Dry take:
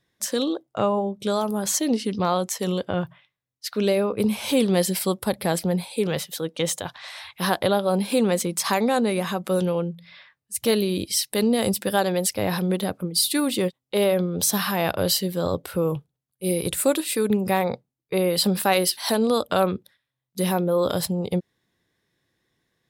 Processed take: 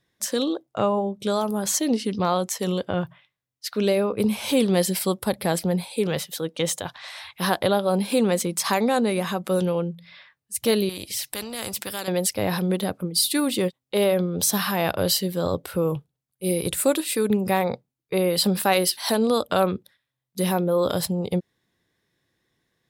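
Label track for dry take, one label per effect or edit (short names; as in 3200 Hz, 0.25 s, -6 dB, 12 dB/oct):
10.890000	12.080000	spectral compressor 2:1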